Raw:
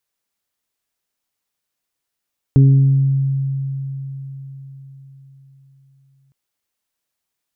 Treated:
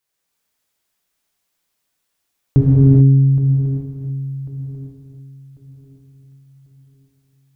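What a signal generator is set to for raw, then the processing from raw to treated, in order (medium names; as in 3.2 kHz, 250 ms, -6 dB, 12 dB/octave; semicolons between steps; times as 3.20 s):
additive tone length 3.76 s, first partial 136 Hz, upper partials -9/-18 dB, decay 4.61 s, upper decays 1.18/0.96 s, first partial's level -6 dB
shuffle delay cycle 1094 ms, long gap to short 3:1, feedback 30%, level -14.5 dB; gated-style reverb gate 460 ms flat, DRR -5.5 dB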